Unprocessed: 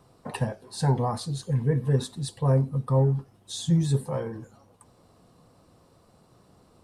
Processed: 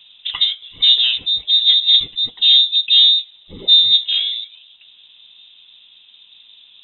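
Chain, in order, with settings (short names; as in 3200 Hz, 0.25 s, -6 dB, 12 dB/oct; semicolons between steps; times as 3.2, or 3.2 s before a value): HPF 160 Hz 12 dB/oct; tilt -2.5 dB/oct; in parallel at -4.5 dB: hard clip -26 dBFS, distortion -5 dB; on the sum: inverted band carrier 3800 Hz; gain +5.5 dB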